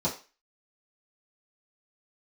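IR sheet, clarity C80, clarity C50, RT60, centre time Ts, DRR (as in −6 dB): 16.0 dB, 10.5 dB, 0.35 s, 20 ms, −9.0 dB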